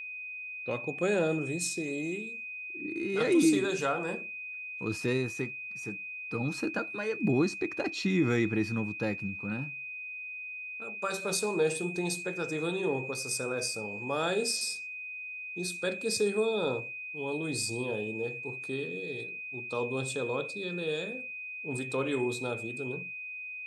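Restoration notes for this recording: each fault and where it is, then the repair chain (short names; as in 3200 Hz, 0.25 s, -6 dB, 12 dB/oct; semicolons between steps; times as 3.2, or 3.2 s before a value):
tone 2500 Hz -38 dBFS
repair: notch 2500 Hz, Q 30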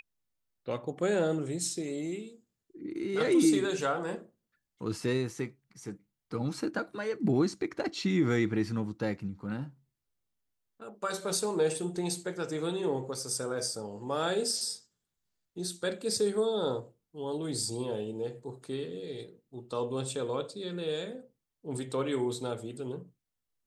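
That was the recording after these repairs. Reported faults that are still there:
none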